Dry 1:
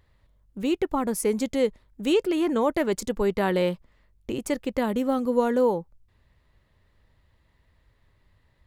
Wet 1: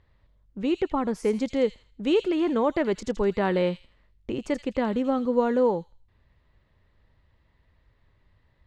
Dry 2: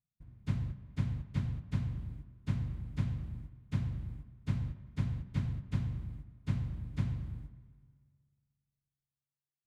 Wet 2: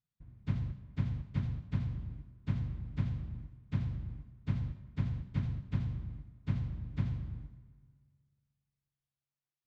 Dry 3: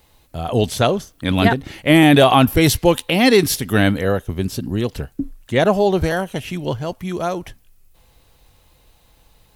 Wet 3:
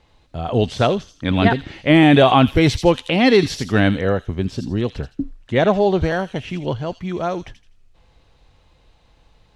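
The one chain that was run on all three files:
high-frequency loss of the air 130 metres
on a send: delay with a high-pass on its return 82 ms, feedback 30%, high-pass 4,000 Hz, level −3.5 dB

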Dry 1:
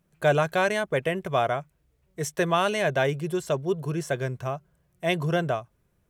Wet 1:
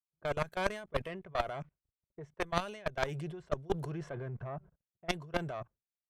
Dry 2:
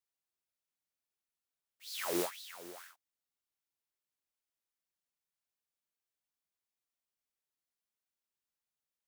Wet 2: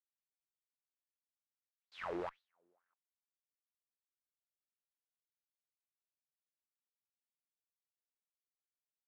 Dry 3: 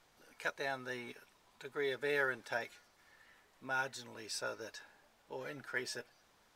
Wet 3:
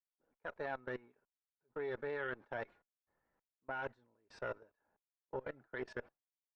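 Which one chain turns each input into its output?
output level in coarse steps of 22 dB
downward expander −55 dBFS
low-pass that shuts in the quiet parts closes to 880 Hz, open at −26.5 dBFS
reversed playback
downward compressor 10 to 1, threshold −36 dBFS
reversed playback
harmonic generator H 4 −10 dB, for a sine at −20.5 dBFS
level +5.5 dB

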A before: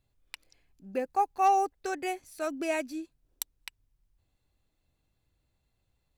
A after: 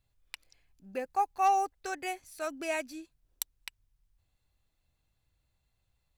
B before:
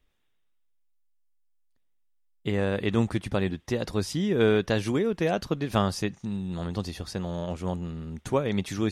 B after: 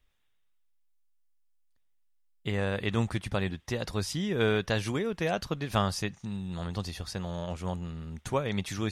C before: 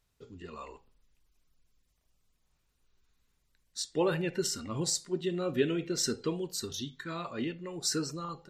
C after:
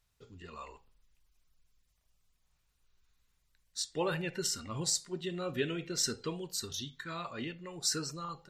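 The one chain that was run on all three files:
parametric band 310 Hz −7 dB 1.8 octaves

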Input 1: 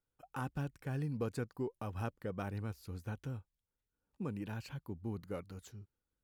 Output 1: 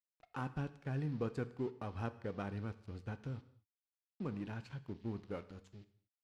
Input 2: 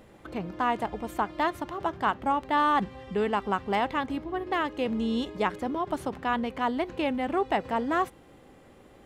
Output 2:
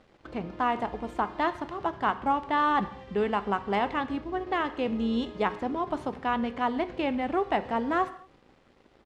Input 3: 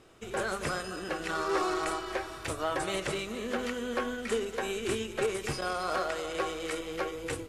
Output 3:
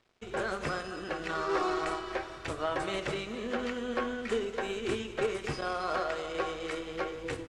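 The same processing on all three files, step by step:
downsampling to 32,000 Hz
noise in a band 1,700–5,200 Hz −71 dBFS
dead-zone distortion −55 dBFS
high-frequency loss of the air 82 metres
reverb whose tail is shaped and stops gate 260 ms falling, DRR 11.5 dB

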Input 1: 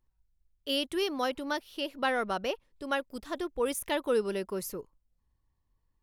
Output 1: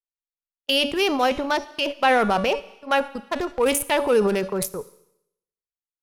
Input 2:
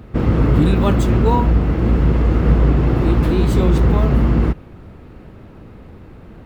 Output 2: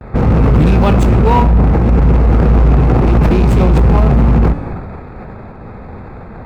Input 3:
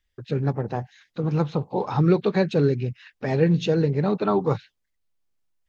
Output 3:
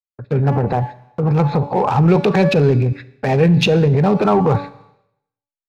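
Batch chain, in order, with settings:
adaptive Wiener filter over 15 samples
hum removal 285.4 Hz, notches 38
noise gate −38 dBFS, range −52 dB
thirty-one-band graphic EQ 315 Hz −7 dB, 800 Hz +5 dB, 2,500 Hz +7 dB
transient designer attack −3 dB, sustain +8 dB
in parallel at 0 dB: downward compressor, threshold −21 dBFS
on the sum: soft clipping −6 dBFS
four-comb reverb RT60 0.77 s, combs from 28 ms, DRR 18 dB
one half of a high-frequency compander encoder only
level +4 dB

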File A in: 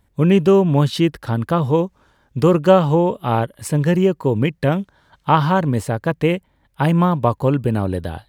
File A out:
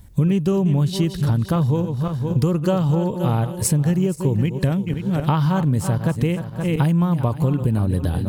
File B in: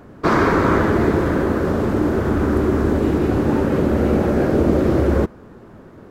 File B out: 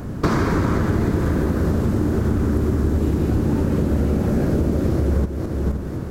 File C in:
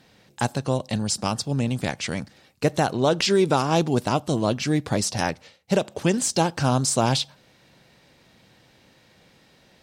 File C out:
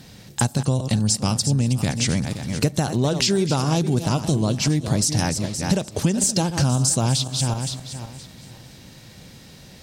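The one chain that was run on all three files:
feedback delay that plays each chunk backwards 260 ms, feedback 45%, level −11.5 dB
bass and treble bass +11 dB, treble +10 dB
downward compressor 5 to 1, threshold −24 dBFS
level +6 dB

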